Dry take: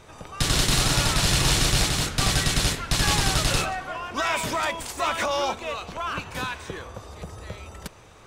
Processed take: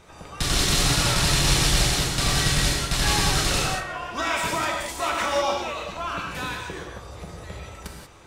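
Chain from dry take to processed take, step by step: non-linear reverb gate 0.21 s flat, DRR -0.5 dB; gain -2.5 dB

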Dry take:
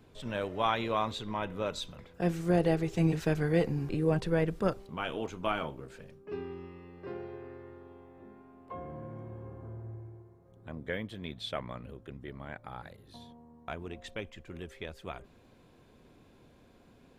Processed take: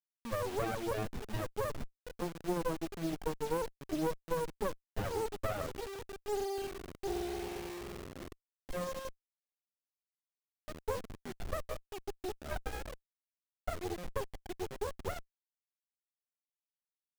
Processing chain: spectral contrast raised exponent 3.8; HPF 360 Hz 24 dB/oct; compressor 6:1, threshold -40 dBFS, peak gain reduction 14.5 dB; bit-crush 9-bit; running maximum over 33 samples; gain +10.5 dB

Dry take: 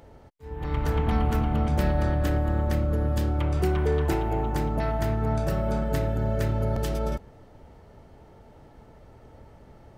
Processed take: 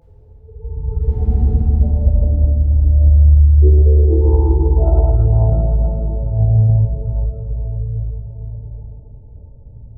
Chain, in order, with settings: spectral contrast raised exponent 3.8; 5.72–6.23 HPF 450 Hz 24 dB/oct; dynamic EQ 750 Hz, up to +5 dB, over -49 dBFS, Q 0.92; 1–1.48 sample leveller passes 1; 2–3.05 comb 3.3 ms, depth 96%; reverb RT60 4.6 s, pre-delay 15 ms, DRR -10 dB; Doppler distortion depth 0.3 ms

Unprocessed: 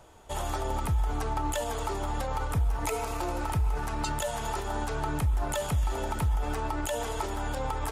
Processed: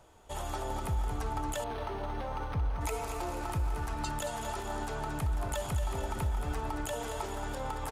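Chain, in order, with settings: on a send: feedback echo 0.226 s, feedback 45%, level -8 dB; 1.64–2.81 on the sum: decimation joined by straight lines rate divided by 6×; gain -5 dB

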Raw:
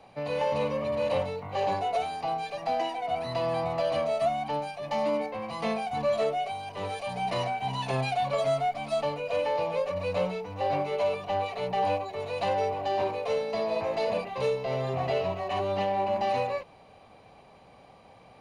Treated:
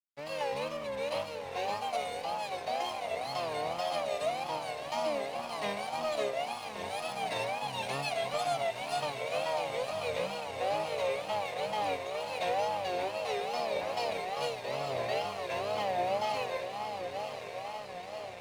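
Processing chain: tilt +2.5 dB/oct; on a send: diffused feedback echo 1.012 s, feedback 72%, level -6.5 dB; on the sum: crossover distortion -44.5 dBFS; wow and flutter 150 cents; gain -4 dB

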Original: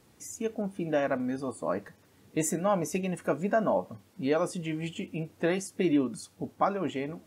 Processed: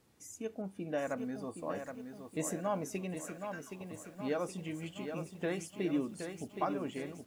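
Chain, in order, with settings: 3.16–3.81 inverse Chebyshev high-pass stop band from 280 Hz, stop band 80 dB; lo-fi delay 0.77 s, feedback 55%, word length 9-bit, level -7 dB; gain -8 dB

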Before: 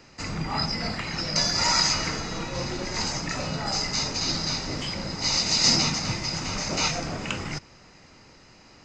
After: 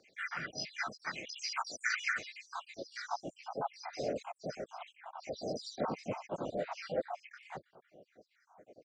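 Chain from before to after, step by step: random spectral dropouts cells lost 81%; band-pass sweep 1500 Hz -> 560 Hz, 2.44–3.56; harmoniser -3 st -15 dB, +3 st -7 dB; gain +6.5 dB

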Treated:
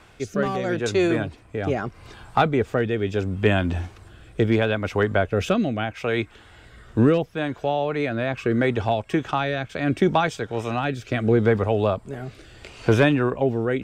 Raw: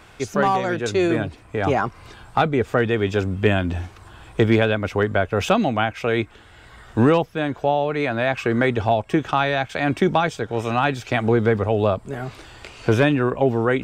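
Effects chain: rotary speaker horn 0.75 Hz

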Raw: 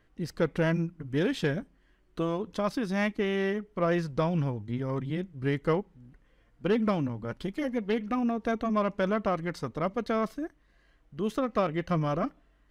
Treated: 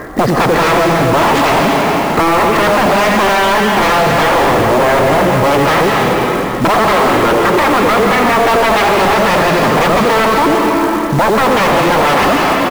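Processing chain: Wiener smoothing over 15 samples; limiter -23.5 dBFS, peak gain reduction 9.5 dB; 6.84–8.93 speaker cabinet 160–3000 Hz, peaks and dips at 230 Hz -8 dB, 370 Hz +10 dB, 950 Hz +5 dB, 1400 Hz -4 dB; echo 87 ms -8.5 dB; sine folder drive 16 dB, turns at -19 dBFS; notch 1500 Hz, Q 15; reverb RT60 2.0 s, pre-delay 0.119 s, DRR 4 dB; overdrive pedal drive 29 dB, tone 1600 Hz, clips at -3.5 dBFS; short-mantissa float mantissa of 2-bit; compressor 3:1, threshold -18 dBFS, peak gain reduction 6 dB; gain +7.5 dB

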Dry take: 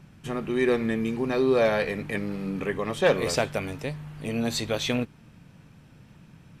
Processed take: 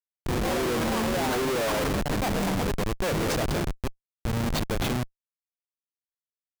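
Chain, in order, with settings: echoes that change speed 82 ms, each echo +6 st, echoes 3; Schmitt trigger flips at -25.5 dBFS

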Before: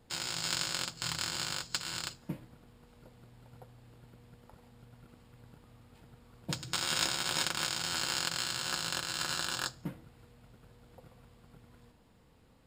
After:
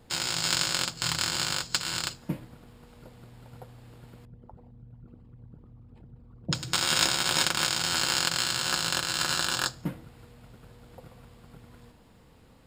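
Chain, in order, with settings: 4.25–6.55 formant sharpening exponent 2; gain +7 dB

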